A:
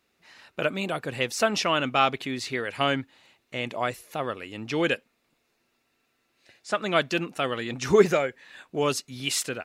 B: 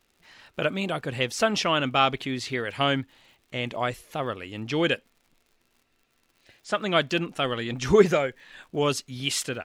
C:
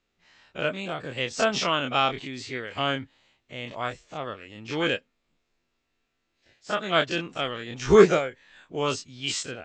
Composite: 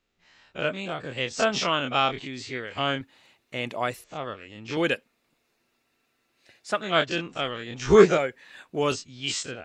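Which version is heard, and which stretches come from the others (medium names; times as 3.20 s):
C
3.01–4.04 s: from A
4.77–6.81 s: from A
8.18–8.92 s: from A
not used: B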